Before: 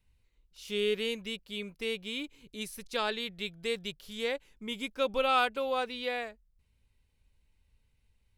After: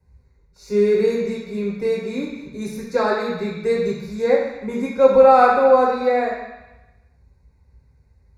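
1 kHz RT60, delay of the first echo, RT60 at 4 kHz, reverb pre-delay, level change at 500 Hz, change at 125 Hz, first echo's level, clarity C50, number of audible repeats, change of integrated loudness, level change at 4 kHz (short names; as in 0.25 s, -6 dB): 1.1 s, none, 1.1 s, 3 ms, +17.5 dB, +17.0 dB, none, 3.0 dB, none, +15.0 dB, -4.0 dB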